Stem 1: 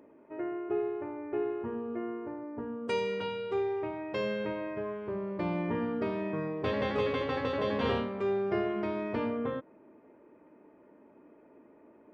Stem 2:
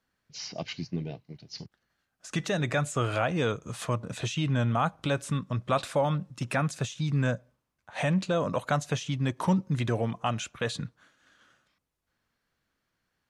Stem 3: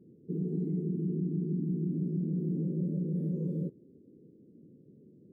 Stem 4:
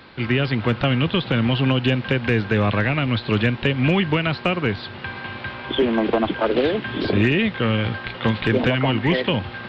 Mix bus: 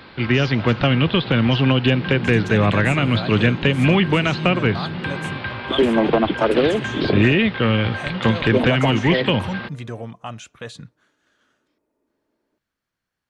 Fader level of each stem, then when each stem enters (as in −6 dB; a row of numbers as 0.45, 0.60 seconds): −16.0, −3.5, +2.0, +2.5 decibels; 0.45, 0.00, 1.65, 0.00 seconds